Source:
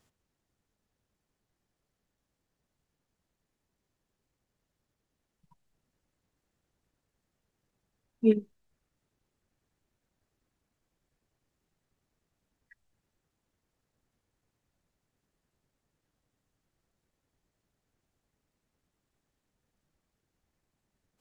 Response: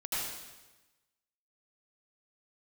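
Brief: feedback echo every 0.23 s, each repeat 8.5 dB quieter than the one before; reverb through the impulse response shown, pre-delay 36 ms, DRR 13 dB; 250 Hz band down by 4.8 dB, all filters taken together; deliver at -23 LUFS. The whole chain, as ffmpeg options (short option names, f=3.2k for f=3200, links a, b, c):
-filter_complex "[0:a]equalizer=f=250:t=o:g=-5.5,aecho=1:1:230|460|690|920:0.376|0.143|0.0543|0.0206,asplit=2[a][b];[1:a]atrim=start_sample=2205,adelay=36[c];[b][c]afir=irnorm=-1:irlink=0,volume=-18.5dB[d];[a][d]amix=inputs=2:normalize=0,volume=9.5dB"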